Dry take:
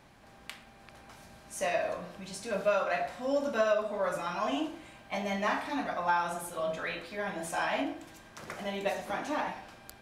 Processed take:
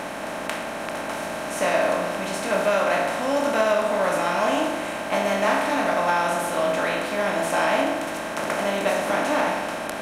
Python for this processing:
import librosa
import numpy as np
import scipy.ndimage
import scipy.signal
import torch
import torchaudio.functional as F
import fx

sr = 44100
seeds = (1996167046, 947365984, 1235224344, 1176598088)

y = fx.bin_compress(x, sr, power=0.4)
y = F.gain(torch.from_numpy(y), 3.0).numpy()